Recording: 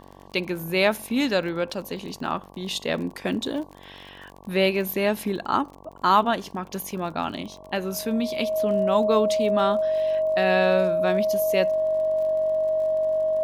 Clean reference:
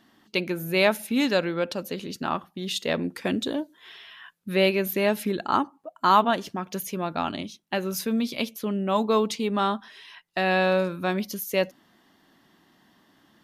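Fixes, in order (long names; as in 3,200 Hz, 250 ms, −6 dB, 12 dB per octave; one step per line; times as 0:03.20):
click removal
hum removal 47.2 Hz, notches 24
notch filter 630 Hz, Q 30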